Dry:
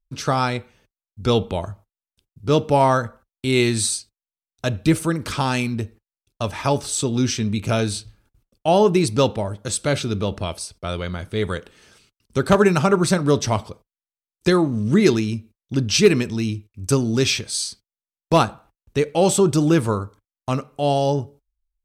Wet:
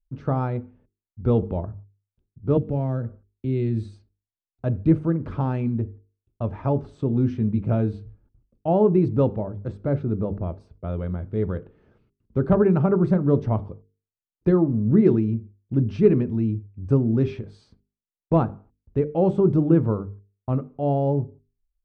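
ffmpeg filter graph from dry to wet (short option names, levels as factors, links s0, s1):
-filter_complex "[0:a]asettb=1/sr,asplit=3[s0][s1][s2];[s0]atrim=end=2.574[s3];[s1]atrim=start=2.57:end=3.96,asetpts=PTS-STARTPTS,afade=t=in:d=0.004:c=qsin,afade=t=out:st=1.386:d=0.004:c=qsin,equalizer=f=1000:w=1.4:g=-10,acrossover=split=150|3000[s4][s5][s6];[s5]acompressor=threshold=0.0562:ratio=2:attack=3.2:release=140:knee=2.83:detection=peak[s7];[s4][s7][s6]amix=inputs=3:normalize=0[s8];[s2]atrim=start=3.956[s9];[s3][s8]acrossfade=d=0.004:c1=hsin:c2=qsin[s10];[s10][s9]acrossfade=d=0.004:c1=qsin:c2=hsin,asettb=1/sr,asplit=3[s11][s12][s13];[s11]atrim=end=9.724[s14];[s12]atrim=start=9.72:end=10.6,asetpts=PTS-STARTPTS,afade=t=in:d=0.004:c=qsin,afade=t=out:st=0.876:d=0.004:c=qsin,lowpass=f=3800:p=1,equalizer=f=3000:t=o:w=0.64:g=-6.5[s15];[s13]atrim=start=10.596[s16];[s14][s15]acrossfade=d=0.004:c1=hsin:c2=qsin[s17];[s17][s16]acrossfade=d=0.004:c1=qsin:c2=hsin,lowpass=1800,tiltshelf=f=850:g=9.5,bandreject=f=50:t=h:w=6,bandreject=f=100:t=h:w=6,bandreject=f=150:t=h:w=6,bandreject=f=200:t=h:w=6,bandreject=f=250:t=h:w=6,bandreject=f=300:t=h:w=6,bandreject=f=350:t=h:w=6,bandreject=f=400:t=h:w=6,bandreject=f=450:t=h:w=6,volume=0.422"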